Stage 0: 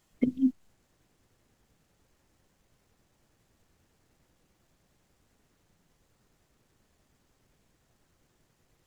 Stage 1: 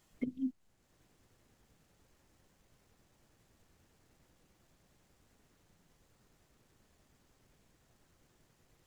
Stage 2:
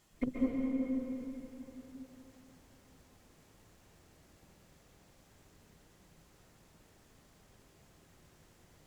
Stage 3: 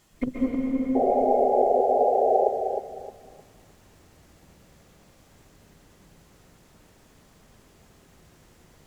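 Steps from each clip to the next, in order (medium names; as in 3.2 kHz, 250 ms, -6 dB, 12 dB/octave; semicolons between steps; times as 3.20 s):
compression 1.5:1, threshold -52 dBFS, peak gain reduction 11.5 dB
valve stage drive 30 dB, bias 0.8; plate-style reverb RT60 3.8 s, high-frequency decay 0.85×, pre-delay 115 ms, DRR -3.5 dB; trim +7 dB
painted sound noise, 0.95–2.49 s, 370–830 Hz -28 dBFS; on a send: filtered feedback delay 309 ms, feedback 28%, level -6 dB; on the sum: trim +6.5 dB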